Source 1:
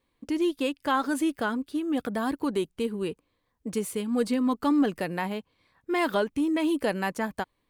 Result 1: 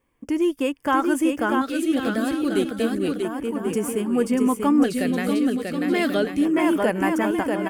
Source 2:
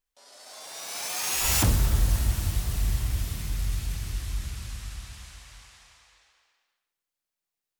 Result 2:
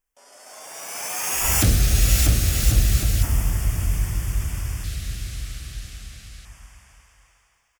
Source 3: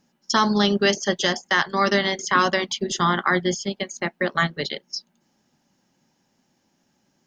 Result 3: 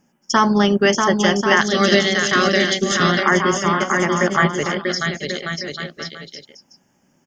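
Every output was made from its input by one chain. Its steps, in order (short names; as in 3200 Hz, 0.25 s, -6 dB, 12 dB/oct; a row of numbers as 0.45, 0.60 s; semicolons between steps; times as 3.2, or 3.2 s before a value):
bouncing-ball echo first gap 0.64 s, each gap 0.7×, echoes 5; LFO notch square 0.31 Hz 950–4000 Hz; gain +4.5 dB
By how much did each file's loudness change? +5.5, +6.0, +5.0 LU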